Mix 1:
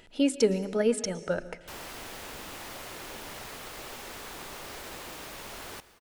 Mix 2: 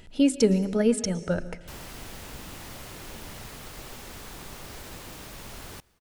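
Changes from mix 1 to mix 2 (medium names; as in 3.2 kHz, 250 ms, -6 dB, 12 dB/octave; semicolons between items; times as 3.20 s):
background: send -11.5 dB; master: add tone controls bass +11 dB, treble +3 dB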